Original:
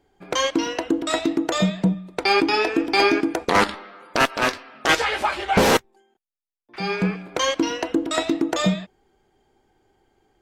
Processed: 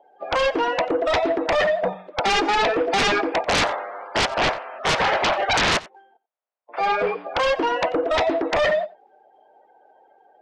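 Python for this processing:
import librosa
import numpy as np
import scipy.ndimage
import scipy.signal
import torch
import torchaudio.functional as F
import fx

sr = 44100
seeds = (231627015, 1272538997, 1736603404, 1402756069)

p1 = fx.spec_quant(x, sr, step_db=30)
p2 = fx.low_shelf(p1, sr, hz=490.0, db=-6.5)
p3 = np.clip(10.0 ** (20.5 / 20.0) * p2, -1.0, 1.0) / 10.0 ** (20.5 / 20.0)
p4 = p2 + (p3 * 10.0 ** (-11.0 / 20.0))
p5 = fx.ladder_bandpass(p4, sr, hz=720.0, resonance_pct=50)
p6 = fx.fold_sine(p5, sr, drive_db=14, ceiling_db=-19.5)
p7 = p6 + 10.0 ** (-21.0 / 20.0) * np.pad(p6, (int(90 * sr / 1000.0), 0))[:len(p6)]
y = p7 * 10.0 ** (3.5 / 20.0)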